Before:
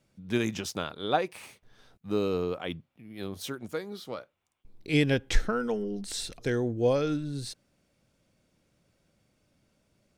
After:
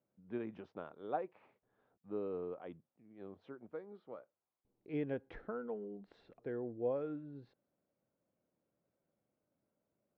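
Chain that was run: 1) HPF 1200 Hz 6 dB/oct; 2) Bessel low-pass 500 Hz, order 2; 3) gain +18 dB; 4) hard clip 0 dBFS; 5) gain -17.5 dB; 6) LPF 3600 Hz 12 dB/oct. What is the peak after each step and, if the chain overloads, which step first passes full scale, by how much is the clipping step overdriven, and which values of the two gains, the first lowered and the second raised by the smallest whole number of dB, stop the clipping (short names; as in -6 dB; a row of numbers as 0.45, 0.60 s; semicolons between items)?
-14.5, -24.0, -6.0, -6.0, -23.5, -23.5 dBFS; no overload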